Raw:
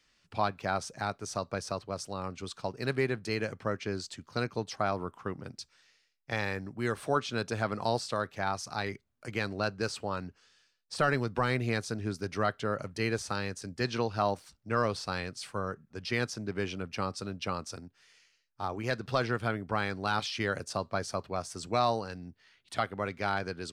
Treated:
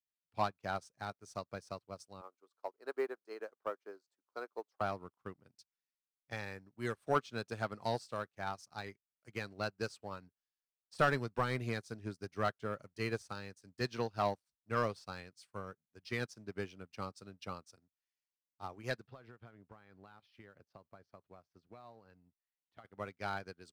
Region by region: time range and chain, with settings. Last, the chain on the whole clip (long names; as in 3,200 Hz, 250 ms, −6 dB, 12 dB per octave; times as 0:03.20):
0:02.21–0:04.81: high-pass filter 350 Hz 24 dB per octave + high shelf with overshoot 1,700 Hz −9.5 dB, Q 1.5 + floating-point word with a short mantissa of 6 bits
0:19.07–0:22.85: downward compressor 5 to 1, threshold −33 dBFS + high-frequency loss of the air 260 metres
whole clip: leveller curve on the samples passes 1; high-shelf EQ 9,800 Hz +6.5 dB; expander for the loud parts 2.5 to 1, over −44 dBFS; level −2.5 dB